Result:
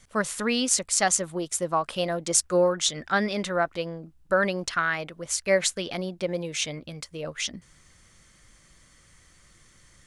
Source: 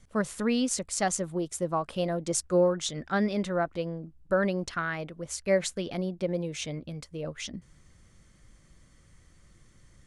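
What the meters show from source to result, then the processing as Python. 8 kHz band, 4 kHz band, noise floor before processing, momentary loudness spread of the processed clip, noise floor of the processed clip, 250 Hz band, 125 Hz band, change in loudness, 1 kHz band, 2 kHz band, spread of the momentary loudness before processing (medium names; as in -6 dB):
+8.5 dB, +8.0 dB, -59 dBFS, 10 LU, -58 dBFS, -1.0 dB, -1.5 dB, +4.0 dB, +5.0 dB, +7.0 dB, 10 LU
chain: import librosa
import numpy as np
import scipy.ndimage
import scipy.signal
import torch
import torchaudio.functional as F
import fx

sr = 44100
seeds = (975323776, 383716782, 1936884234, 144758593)

y = fx.tilt_shelf(x, sr, db=-5.5, hz=640.0)
y = y * 10.0 ** (3.0 / 20.0)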